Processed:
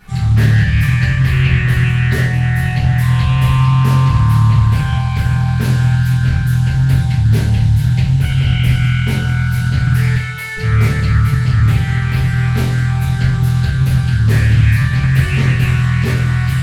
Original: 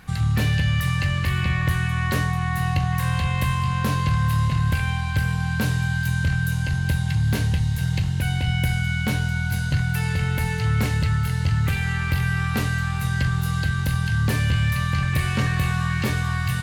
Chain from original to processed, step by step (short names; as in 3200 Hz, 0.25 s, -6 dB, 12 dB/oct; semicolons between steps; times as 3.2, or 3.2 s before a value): 10.15–10.57 HPF 950 Hz 12 dB/oct; shoebox room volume 48 m³, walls mixed, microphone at 1.8 m; Doppler distortion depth 0.27 ms; gain -5 dB